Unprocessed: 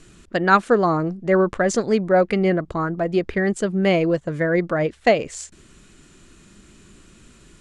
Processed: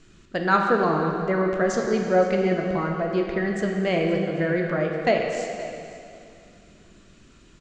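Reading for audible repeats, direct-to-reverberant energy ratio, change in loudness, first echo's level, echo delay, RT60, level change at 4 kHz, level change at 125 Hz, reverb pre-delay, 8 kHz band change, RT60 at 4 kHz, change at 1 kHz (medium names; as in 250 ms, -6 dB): 1, 1.0 dB, -3.5 dB, -17.5 dB, 521 ms, 2.5 s, -3.0 dB, -3.0 dB, 12 ms, -7.0 dB, 2.4 s, -3.0 dB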